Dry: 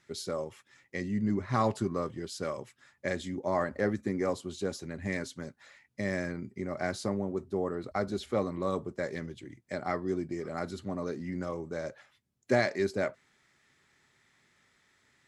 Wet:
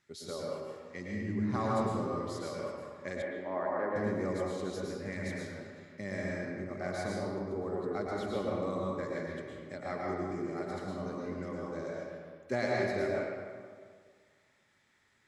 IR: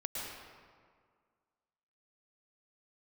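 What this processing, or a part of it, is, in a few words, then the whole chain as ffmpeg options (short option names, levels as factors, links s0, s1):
stairwell: -filter_complex "[1:a]atrim=start_sample=2205[s0];[0:a][s0]afir=irnorm=-1:irlink=0,asettb=1/sr,asplit=3[s1][s2][s3];[s1]atrim=end=3.224[s4];[s2]atrim=start=3.22:end=3.96,asetpts=PTS-STARTPTS,afade=t=in:d=0.004:c=qsin,afade=t=out:st=0.736:d=0.004:c=qsin,acrossover=split=230 2700:gain=0.141 1 0.0708[s5][s6][s7];[s5][s6][s7]amix=inputs=3:normalize=0[s8];[s3]atrim=start=3.956[s9];[s4][s8]acrossfade=d=0.004:c1=hsin:c2=qsin[s10];[s10][s9]acrossfade=d=0.004:c1=qsin:c2=hsin,volume=0.596"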